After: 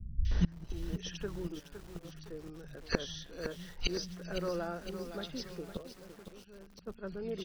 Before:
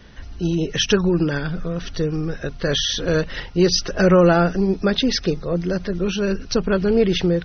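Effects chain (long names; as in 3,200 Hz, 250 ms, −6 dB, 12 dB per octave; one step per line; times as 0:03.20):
three-band delay without the direct sound lows, highs, mids 250/310 ms, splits 170/2,300 Hz
gate with flip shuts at −21 dBFS, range −27 dB
0:01.55–0:02.05: output level in coarse steps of 16 dB
0:05.72–0:07.04: noise gate −45 dBFS, range −10 dB
feedback echo at a low word length 511 ms, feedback 55%, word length 9 bits, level −9 dB
level +5.5 dB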